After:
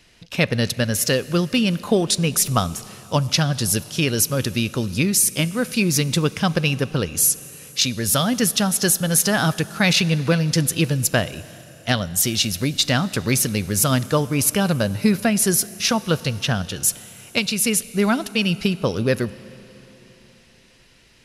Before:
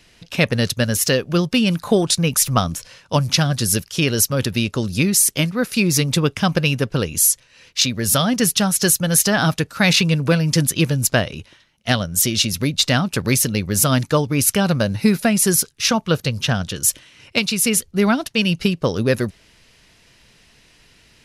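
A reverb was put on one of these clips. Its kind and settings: Schroeder reverb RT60 3.9 s, combs from 30 ms, DRR 17.5 dB; gain -2 dB

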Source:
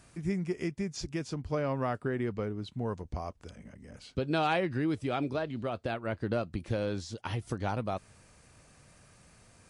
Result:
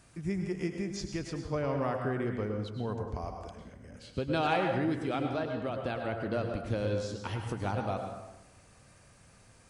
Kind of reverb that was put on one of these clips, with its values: plate-style reverb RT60 1 s, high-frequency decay 0.6×, pre-delay 90 ms, DRR 3.5 dB; gain -1.5 dB

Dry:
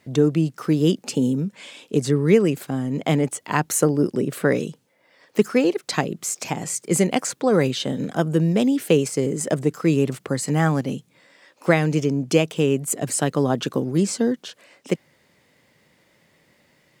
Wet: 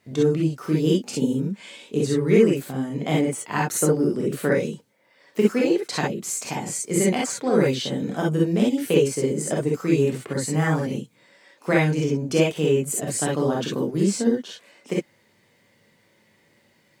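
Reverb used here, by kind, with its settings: non-linear reverb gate 80 ms rising, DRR -3 dB; gain -6 dB

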